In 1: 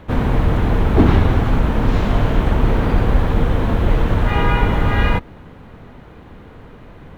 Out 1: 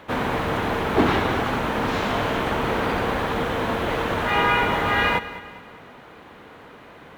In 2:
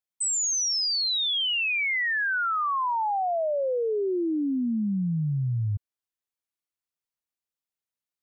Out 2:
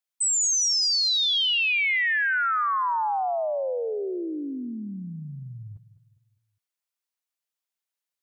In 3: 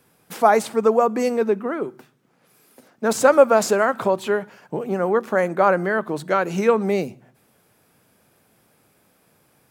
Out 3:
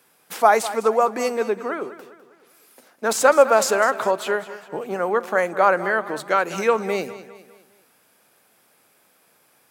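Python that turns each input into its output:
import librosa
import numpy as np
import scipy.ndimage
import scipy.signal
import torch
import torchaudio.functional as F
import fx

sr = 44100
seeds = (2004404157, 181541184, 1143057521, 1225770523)

p1 = fx.highpass(x, sr, hz=710.0, slope=6)
p2 = p1 + fx.echo_feedback(p1, sr, ms=203, feedback_pct=44, wet_db=-15, dry=0)
y = p2 * librosa.db_to_amplitude(3.0)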